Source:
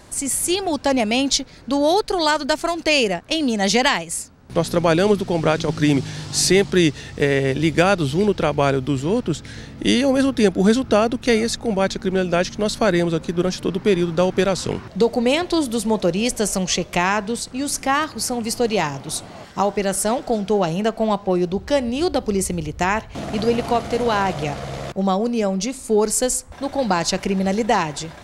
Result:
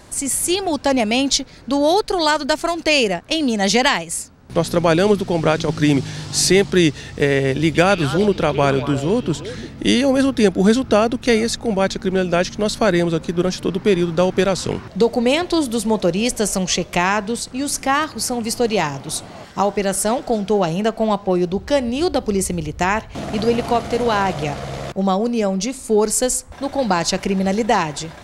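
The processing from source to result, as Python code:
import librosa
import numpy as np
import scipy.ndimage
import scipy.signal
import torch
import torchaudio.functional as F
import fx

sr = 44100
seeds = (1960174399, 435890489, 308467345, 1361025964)

y = fx.echo_stepped(x, sr, ms=116, hz=3300.0, octaves=-1.4, feedback_pct=70, wet_db=-5.0, at=(7.63, 9.69))
y = y * librosa.db_to_amplitude(1.5)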